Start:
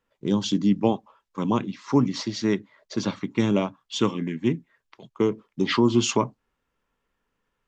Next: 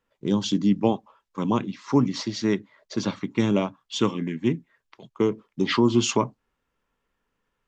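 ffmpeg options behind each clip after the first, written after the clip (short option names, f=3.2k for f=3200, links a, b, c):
-af anull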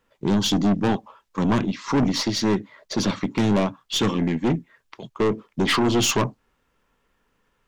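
-af "aeval=exprs='(tanh(17.8*val(0)+0.25)-tanh(0.25))/17.8':c=same,volume=9dB"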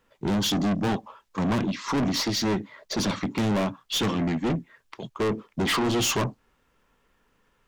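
-af "asoftclip=type=tanh:threshold=-23dB,volume=1.5dB"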